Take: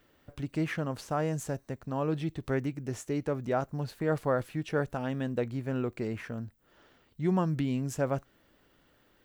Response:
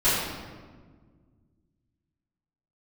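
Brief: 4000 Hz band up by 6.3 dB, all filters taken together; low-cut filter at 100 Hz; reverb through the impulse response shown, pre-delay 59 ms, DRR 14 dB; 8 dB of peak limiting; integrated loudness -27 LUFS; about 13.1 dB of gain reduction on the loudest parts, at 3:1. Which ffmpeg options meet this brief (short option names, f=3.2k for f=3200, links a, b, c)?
-filter_complex "[0:a]highpass=100,equalizer=f=4k:t=o:g=8.5,acompressor=threshold=-42dB:ratio=3,alimiter=level_in=10.5dB:limit=-24dB:level=0:latency=1,volume=-10.5dB,asplit=2[a][b];[1:a]atrim=start_sample=2205,adelay=59[c];[b][c]afir=irnorm=-1:irlink=0,volume=-30.5dB[d];[a][d]amix=inputs=2:normalize=0,volume=17.5dB"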